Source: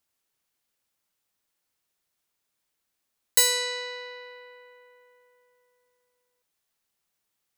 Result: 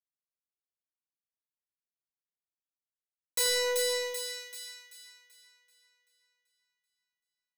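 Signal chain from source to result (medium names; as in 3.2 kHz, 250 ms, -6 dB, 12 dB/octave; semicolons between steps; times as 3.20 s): local Wiener filter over 15 samples; peaking EQ 1.2 kHz -13.5 dB 0.22 oct; waveshaping leveller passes 5; rotary cabinet horn 0.75 Hz, later 5 Hz, at 3.40 s; feedback comb 160 Hz, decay 0.17 s, harmonics all, mix 70%; two-band feedback delay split 1.5 kHz, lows 83 ms, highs 385 ms, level -4 dB; tape noise reduction on one side only decoder only; trim -8.5 dB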